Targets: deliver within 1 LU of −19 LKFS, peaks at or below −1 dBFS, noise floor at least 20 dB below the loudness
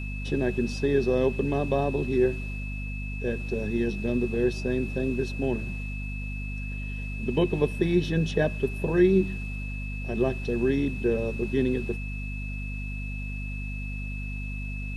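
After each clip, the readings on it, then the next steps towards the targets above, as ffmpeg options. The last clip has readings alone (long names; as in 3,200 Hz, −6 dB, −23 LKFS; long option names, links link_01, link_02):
mains hum 50 Hz; hum harmonics up to 250 Hz; level of the hum −31 dBFS; interfering tone 2,600 Hz; level of the tone −39 dBFS; integrated loudness −28.0 LKFS; sample peak −10.0 dBFS; target loudness −19.0 LKFS
→ -af "bandreject=frequency=50:width_type=h:width=4,bandreject=frequency=100:width_type=h:width=4,bandreject=frequency=150:width_type=h:width=4,bandreject=frequency=200:width_type=h:width=4,bandreject=frequency=250:width_type=h:width=4"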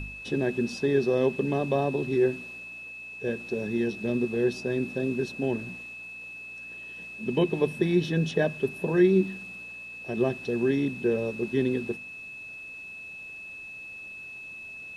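mains hum none found; interfering tone 2,600 Hz; level of the tone −39 dBFS
→ -af "bandreject=frequency=2600:width=30"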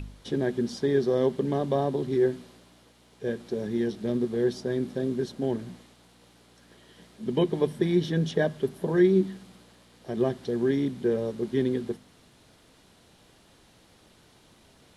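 interfering tone none found; integrated loudness −27.5 LKFS; sample peak −11.0 dBFS; target loudness −19.0 LKFS
→ -af "volume=8.5dB"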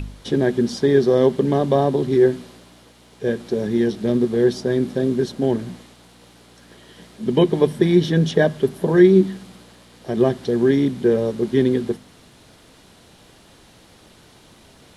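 integrated loudness −19.0 LKFS; sample peak −2.5 dBFS; background noise floor −50 dBFS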